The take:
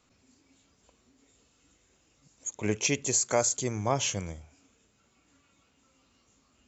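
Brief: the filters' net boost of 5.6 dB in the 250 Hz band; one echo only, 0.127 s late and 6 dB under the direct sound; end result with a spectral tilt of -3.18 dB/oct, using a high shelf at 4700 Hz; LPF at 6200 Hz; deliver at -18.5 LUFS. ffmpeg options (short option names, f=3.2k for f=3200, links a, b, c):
-af "lowpass=6.2k,equalizer=f=250:t=o:g=7,highshelf=f=4.7k:g=8,aecho=1:1:127:0.501,volume=7dB"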